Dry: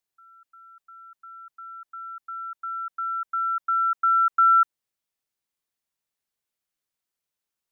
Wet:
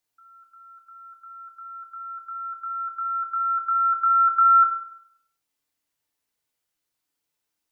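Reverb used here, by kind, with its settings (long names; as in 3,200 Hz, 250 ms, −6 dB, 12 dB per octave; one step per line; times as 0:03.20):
feedback delay network reverb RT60 0.68 s, low-frequency decay 0.95×, high-frequency decay 0.9×, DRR 1 dB
level +2.5 dB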